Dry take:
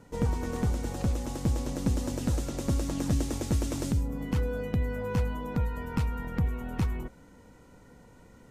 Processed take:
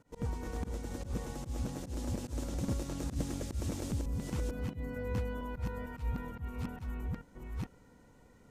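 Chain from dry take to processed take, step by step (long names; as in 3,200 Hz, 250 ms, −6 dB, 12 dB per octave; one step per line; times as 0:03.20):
delay that plays each chunk backwards 451 ms, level −2.5 dB
volume swells 100 ms
level −8 dB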